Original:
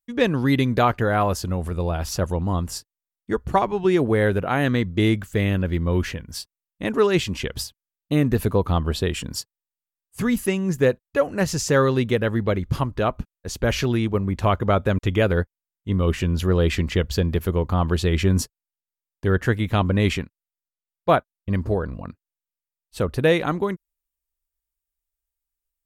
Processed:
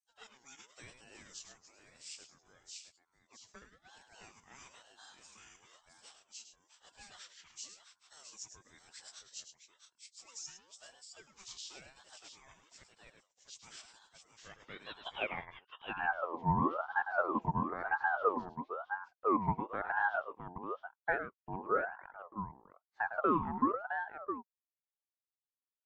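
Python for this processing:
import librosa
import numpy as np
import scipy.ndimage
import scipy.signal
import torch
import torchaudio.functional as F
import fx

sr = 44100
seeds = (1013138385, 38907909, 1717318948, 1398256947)

y = fx.freq_compress(x, sr, knee_hz=1800.0, ratio=1.5)
y = fx.filter_sweep_bandpass(y, sr, from_hz=6800.0, to_hz=380.0, start_s=14.34, end_s=16.04, q=5.1)
y = fx.echo_multitap(y, sr, ms=(105, 663), db=(-9.5, -8.0))
y = fx.ring_lfo(y, sr, carrier_hz=890.0, swing_pct=40, hz=1.0)
y = y * librosa.db_to_amplitude(-1.0)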